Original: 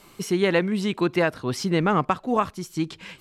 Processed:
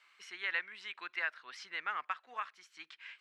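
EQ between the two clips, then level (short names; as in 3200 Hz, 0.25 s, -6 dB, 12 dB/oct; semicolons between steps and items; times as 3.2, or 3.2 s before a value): ladder band-pass 2100 Hz, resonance 40%; +1.0 dB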